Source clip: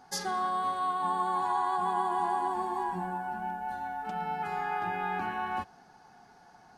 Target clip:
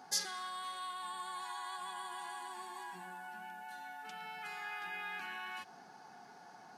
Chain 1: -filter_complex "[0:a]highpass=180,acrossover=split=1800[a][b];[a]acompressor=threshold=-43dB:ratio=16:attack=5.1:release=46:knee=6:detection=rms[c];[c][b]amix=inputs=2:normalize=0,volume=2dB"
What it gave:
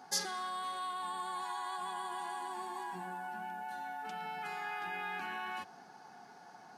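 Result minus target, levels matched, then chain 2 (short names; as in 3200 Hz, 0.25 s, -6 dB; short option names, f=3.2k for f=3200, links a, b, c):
compressor: peak gain reduction -8 dB
-filter_complex "[0:a]highpass=180,acrossover=split=1800[a][b];[a]acompressor=threshold=-51.5dB:ratio=16:attack=5.1:release=46:knee=6:detection=rms[c];[c][b]amix=inputs=2:normalize=0,volume=2dB"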